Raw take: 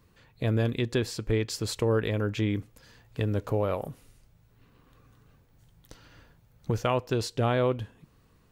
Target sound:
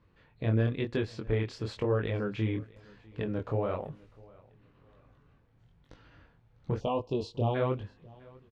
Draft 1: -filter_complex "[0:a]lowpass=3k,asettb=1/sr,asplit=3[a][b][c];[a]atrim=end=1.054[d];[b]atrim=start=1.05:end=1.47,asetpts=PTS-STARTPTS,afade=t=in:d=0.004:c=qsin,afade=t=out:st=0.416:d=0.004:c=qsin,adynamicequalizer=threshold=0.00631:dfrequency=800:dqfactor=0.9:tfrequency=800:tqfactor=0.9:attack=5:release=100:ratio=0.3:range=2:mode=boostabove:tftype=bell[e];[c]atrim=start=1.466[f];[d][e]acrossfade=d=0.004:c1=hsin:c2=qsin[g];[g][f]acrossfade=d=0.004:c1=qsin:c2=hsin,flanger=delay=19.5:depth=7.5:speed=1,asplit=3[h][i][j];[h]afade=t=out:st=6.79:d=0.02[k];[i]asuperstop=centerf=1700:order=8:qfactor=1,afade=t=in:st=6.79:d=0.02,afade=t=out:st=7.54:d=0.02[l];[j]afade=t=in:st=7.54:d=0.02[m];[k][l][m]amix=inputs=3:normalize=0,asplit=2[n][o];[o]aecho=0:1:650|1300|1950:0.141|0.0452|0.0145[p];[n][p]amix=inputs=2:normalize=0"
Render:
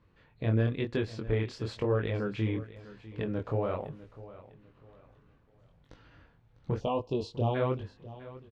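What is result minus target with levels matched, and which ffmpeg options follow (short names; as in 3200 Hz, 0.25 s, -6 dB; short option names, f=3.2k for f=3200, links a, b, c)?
echo-to-direct +7 dB
-filter_complex "[0:a]lowpass=3k,asettb=1/sr,asplit=3[a][b][c];[a]atrim=end=1.054[d];[b]atrim=start=1.05:end=1.47,asetpts=PTS-STARTPTS,afade=t=in:d=0.004:c=qsin,afade=t=out:st=0.416:d=0.004:c=qsin,adynamicequalizer=threshold=0.00631:dfrequency=800:dqfactor=0.9:tfrequency=800:tqfactor=0.9:attack=5:release=100:ratio=0.3:range=2:mode=boostabove:tftype=bell[e];[c]atrim=start=1.466[f];[d][e]acrossfade=d=0.004:c1=hsin:c2=qsin[g];[g][f]acrossfade=d=0.004:c1=qsin:c2=hsin,flanger=delay=19.5:depth=7.5:speed=1,asplit=3[h][i][j];[h]afade=t=out:st=6.79:d=0.02[k];[i]asuperstop=centerf=1700:order=8:qfactor=1,afade=t=in:st=6.79:d=0.02,afade=t=out:st=7.54:d=0.02[l];[j]afade=t=in:st=7.54:d=0.02[m];[k][l][m]amix=inputs=3:normalize=0,asplit=2[n][o];[o]aecho=0:1:650|1300:0.0631|0.0202[p];[n][p]amix=inputs=2:normalize=0"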